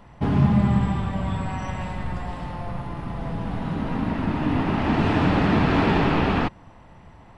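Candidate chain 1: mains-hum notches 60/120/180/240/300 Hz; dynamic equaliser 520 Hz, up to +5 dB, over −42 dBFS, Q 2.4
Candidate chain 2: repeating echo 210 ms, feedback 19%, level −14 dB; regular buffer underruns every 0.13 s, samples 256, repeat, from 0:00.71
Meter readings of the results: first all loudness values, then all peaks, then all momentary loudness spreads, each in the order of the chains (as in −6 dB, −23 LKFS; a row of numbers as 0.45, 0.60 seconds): −23.5, −23.5 LKFS; −7.5, −7.5 dBFS; 13, 13 LU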